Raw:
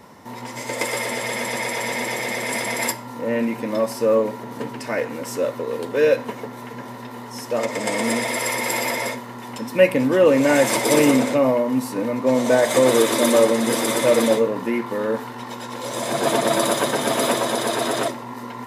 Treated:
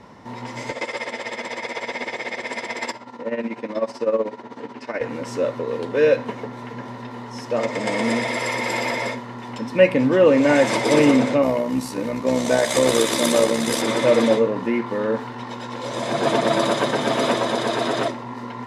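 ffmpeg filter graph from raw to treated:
ffmpeg -i in.wav -filter_complex "[0:a]asettb=1/sr,asplit=3[link_01][link_02][link_03];[link_01]atrim=end=0.714[link_04];[link_02]atrim=start=0.71:end=5.01,asetpts=PTS-STARTPTS,afade=type=in:duration=0.004:curve=qsin,afade=type=out:start_time=4.296:duration=0.004:curve=qsin,highpass=250,lowpass=7600,tremolo=f=16:d=0.76[link_05];[link_03]atrim=start=5.006[link_06];[link_04][link_05]acrossfade=duration=0.004:curve1=hsin:curve2=qsin[link_07];[link_07][link_06]acrossfade=duration=0.004:curve1=qsin:curve2=hsin,asettb=1/sr,asplit=3[link_08][link_09][link_10];[link_08]atrim=end=11.424[link_11];[link_09]atrim=start=11.42:end=13.82,asetpts=PTS-STARTPTS,afade=type=in:duration=0.004:curve=qsin,afade=type=out:start_time=2.396:duration=0.004:curve=qsin,tremolo=f=66:d=0.519,aemphasis=mode=production:type=75fm[link_12];[link_10]atrim=start=13.816[link_13];[link_11][link_12]acrossfade=duration=0.004:curve1=hsin:curve2=qsin[link_14];[link_14][link_13]acrossfade=duration=0.004:curve1=qsin:curve2=hsin,lowpass=5300,lowshelf=frequency=120:gain=6.5,bandreject=frequency=45.31:width_type=h:width=4,bandreject=frequency=90.62:width_type=h:width=4,bandreject=frequency=135.93:width_type=h:width=4" out.wav

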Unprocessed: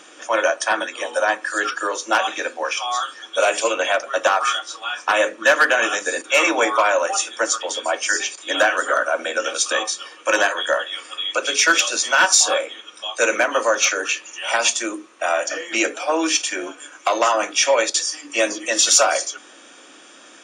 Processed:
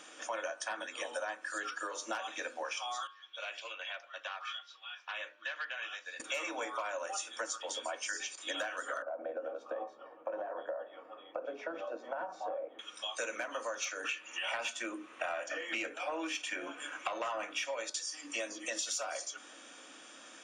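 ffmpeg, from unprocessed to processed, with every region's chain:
ffmpeg -i in.wav -filter_complex "[0:a]asettb=1/sr,asplit=3[link_01][link_02][link_03];[link_01]atrim=end=3.074[link_04];[link_02]atrim=start=3.07:end=6.2,asetpts=PTS-STARTPTS,afade=type=in:duration=0.004:curve=qsin,afade=type=out:start_time=3.126:duration=0.004:curve=qsin,lowpass=frequency=3500:width=0.5412,lowpass=frequency=3500:width=1.3066,aderivative,bandreject=frequency=1300:width=26[link_05];[link_03]atrim=start=6.196[link_06];[link_04][link_05]acrossfade=duration=0.004:curve1=hsin:curve2=qsin[link_07];[link_07][link_06]acrossfade=duration=0.004:curve1=qsin:curve2=hsin,asettb=1/sr,asplit=3[link_08][link_09][link_10];[link_08]atrim=end=9.024[link_11];[link_09]atrim=start=9.02:end=12.79,asetpts=PTS-STARTPTS,afade=type=in:duration=0.004:curve=qsin,afade=type=out:start_time=3.766:duration=0.004:curve=qsin,lowpass=frequency=690:width_type=q:width=1.9,bandreject=frequency=60:width_type=h:width=6,bandreject=frequency=120:width_type=h:width=6,bandreject=frequency=180:width_type=h:width=6,bandreject=frequency=240:width_type=h:width=6,bandreject=frequency=300:width_type=h:width=6,bandreject=frequency=360:width_type=h:width=6,bandreject=frequency=420:width_type=h:width=6,acompressor=threshold=-18dB:ratio=6:attack=3.2:release=140:knee=1:detection=peak[link_12];[link_10]atrim=start=12.786[link_13];[link_11][link_12]acrossfade=duration=0.004:curve1=hsin:curve2=qsin[link_14];[link_14][link_13]acrossfade=duration=0.004:curve1=qsin:curve2=hsin,asettb=1/sr,asplit=3[link_15][link_16][link_17];[link_15]atrim=end=14.044[link_18];[link_16]atrim=start=14.04:end=17.65,asetpts=PTS-STARTPTS,afade=type=in:duration=0.004:curve=qsin,afade=type=out:start_time=3.606:duration=0.004:curve=qsin,highshelf=frequency=3600:width_type=q:width=1.5:gain=-7,acontrast=56[link_19];[link_17]atrim=start=17.646[link_20];[link_18][link_19]acrossfade=duration=0.004:curve1=hsin:curve2=qsin[link_21];[link_21][link_20]acrossfade=duration=0.004:curve1=qsin:curve2=hsin,acompressor=threshold=-28dB:ratio=6,equalizer=frequency=380:width_type=o:width=0.2:gain=-9.5,bandreject=frequency=100.3:width_type=h:width=4,bandreject=frequency=200.6:width_type=h:width=4,bandreject=frequency=300.9:width_type=h:width=4,bandreject=frequency=401.2:width_type=h:width=4,bandreject=frequency=501.5:width_type=h:width=4,bandreject=frequency=601.8:width_type=h:width=4,bandreject=frequency=702.1:width_type=h:width=4,bandreject=frequency=802.4:width_type=h:width=4,bandreject=frequency=902.7:width_type=h:width=4,bandreject=frequency=1003:width_type=h:width=4,bandreject=frequency=1103.3:width_type=h:width=4,bandreject=frequency=1203.6:width_type=h:width=4,bandreject=frequency=1303.9:width_type=h:width=4,bandreject=frequency=1404.2:width_type=h:width=4,bandreject=frequency=1504.5:width_type=h:width=4,bandreject=frequency=1604.8:width_type=h:width=4,volume=-7.5dB" out.wav

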